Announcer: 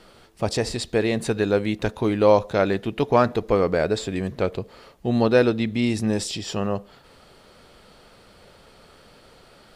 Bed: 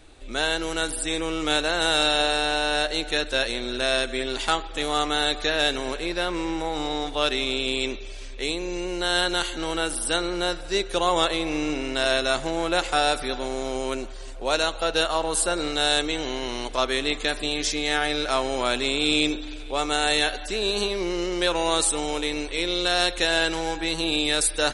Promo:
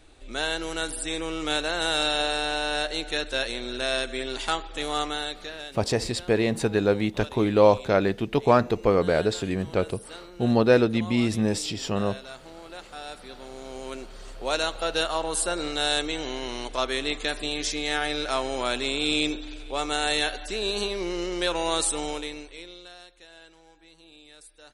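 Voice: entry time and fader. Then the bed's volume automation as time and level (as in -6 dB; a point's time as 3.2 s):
5.35 s, -1.0 dB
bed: 5.02 s -3.5 dB
5.72 s -18.5 dB
12.94 s -18.5 dB
14.39 s -3 dB
22.08 s -3 dB
23.09 s -28 dB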